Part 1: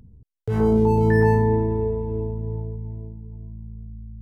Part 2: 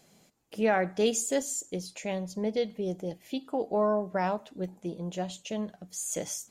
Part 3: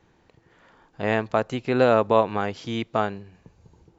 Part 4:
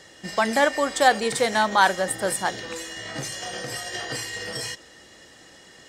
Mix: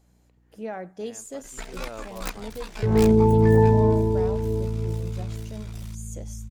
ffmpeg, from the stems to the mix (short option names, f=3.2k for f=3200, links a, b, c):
-filter_complex "[0:a]lowpass=1.1k,adelay=2350,volume=1dB[a];[1:a]equalizer=f=2.6k:t=o:w=2:g=-6.5,volume=-7.5dB,asplit=2[b][c];[2:a]aeval=exprs='val(0)+0.00398*(sin(2*PI*60*n/s)+sin(2*PI*2*60*n/s)/2+sin(2*PI*3*60*n/s)/3+sin(2*PI*4*60*n/s)/4+sin(2*PI*5*60*n/s)/5)':c=same,volume=-12.5dB[d];[3:a]aeval=exprs='abs(val(0))':c=same,aeval=exprs='val(0)*sin(2*PI*30*n/s)':c=same,aeval=exprs='(mod(2.66*val(0)+1,2)-1)/2.66':c=same,adelay=1200,volume=-12dB[e];[c]apad=whole_len=175714[f];[d][f]sidechaincompress=threshold=-45dB:ratio=10:attack=16:release=960[g];[a][b][g][e]amix=inputs=4:normalize=0"